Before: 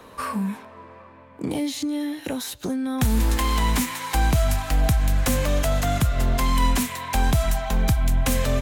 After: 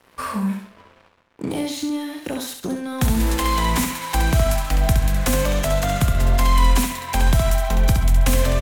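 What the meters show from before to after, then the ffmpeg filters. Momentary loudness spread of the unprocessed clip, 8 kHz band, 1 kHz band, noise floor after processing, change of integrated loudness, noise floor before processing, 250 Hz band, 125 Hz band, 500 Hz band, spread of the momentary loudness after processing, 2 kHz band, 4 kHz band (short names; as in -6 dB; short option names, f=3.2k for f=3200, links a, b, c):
8 LU, +2.5 dB, +3.0 dB, -55 dBFS, +3.0 dB, -46 dBFS, +1.5 dB, +2.5 dB, +3.5 dB, 10 LU, +2.5 dB, +2.5 dB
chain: -af "aeval=exprs='sgn(val(0))*max(abs(val(0))-0.00708,0)':c=same,aecho=1:1:67|134|201|268:0.531|0.175|0.0578|0.0191,volume=2dB"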